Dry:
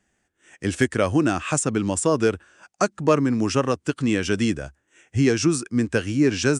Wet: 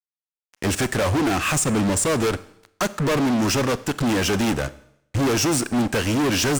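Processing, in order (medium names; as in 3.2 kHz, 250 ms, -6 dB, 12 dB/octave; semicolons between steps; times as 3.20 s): fuzz box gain 33 dB, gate -39 dBFS; Schroeder reverb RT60 0.73 s, combs from 29 ms, DRR 16 dB; trim -5.5 dB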